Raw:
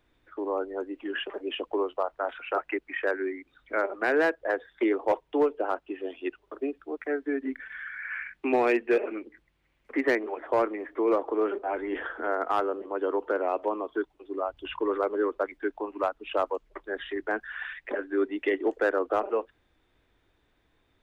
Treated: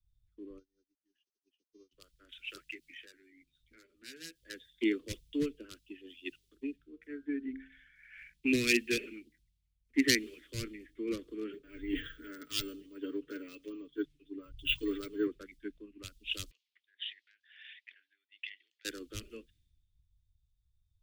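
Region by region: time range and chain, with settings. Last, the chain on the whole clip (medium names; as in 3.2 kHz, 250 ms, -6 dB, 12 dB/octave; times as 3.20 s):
0.58–1.91 s: treble shelf 2.9 kHz -7.5 dB + mains buzz 400 Hz, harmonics 16, -64 dBFS 0 dB/octave + upward expansion 2.5:1, over -42 dBFS
2.71–4.36 s: compression 2:1, threshold -38 dBFS + doubling 12 ms -5 dB
6.76–8.18 s: treble shelf 3.3 kHz -4 dB + de-hum 66.58 Hz, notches 24
11.53–15.27 s: comb 6.9 ms, depth 73% + decimation joined by straight lines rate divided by 2×
16.51–18.85 s: compression, threshold -32 dBFS + resonant high-pass 2 kHz, resonance Q 1.8 + distance through air 220 m
whole clip: Chebyshev band-stop 140–4500 Hz, order 2; treble shelf 3.9 kHz +9 dB; three bands expanded up and down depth 100%; trim +6 dB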